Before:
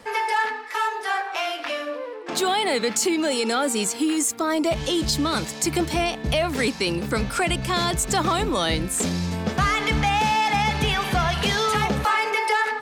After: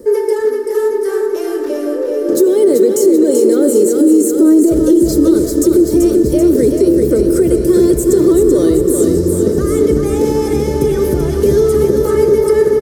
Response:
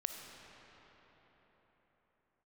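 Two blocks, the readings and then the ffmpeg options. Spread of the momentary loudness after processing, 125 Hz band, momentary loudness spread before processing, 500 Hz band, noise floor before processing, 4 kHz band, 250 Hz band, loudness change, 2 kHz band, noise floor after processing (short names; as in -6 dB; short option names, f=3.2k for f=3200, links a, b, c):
6 LU, +7.0 dB, 5 LU, +17.0 dB, -35 dBFS, -8.5 dB, +15.5 dB, +11.0 dB, n/a, -18 dBFS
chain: -filter_complex "[0:a]firequalizer=gain_entry='entry(110,0);entry(190,-8);entry(290,-6);entry(410,4);entry(720,-28);entry(1200,-21);entry(1800,-19);entry(2500,-27);entry(5500,-7);entry(13000,6)':delay=0.05:min_phase=1,acompressor=threshold=-26dB:ratio=6,equalizer=f=420:w=0.49:g=14.5,aecho=1:1:3.3:0.36,aecho=1:1:385|770|1155|1540|1925|2310|2695|3080:0.531|0.319|0.191|0.115|0.0688|0.0413|0.0248|0.0149,asplit=2[a][b];[1:a]atrim=start_sample=2205[c];[b][c]afir=irnorm=-1:irlink=0,volume=0.5dB[d];[a][d]amix=inputs=2:normalize=0,alimiter=level_in=3dB:limit=-1dB:release=50:level=0:latency=1,volume=-1dB"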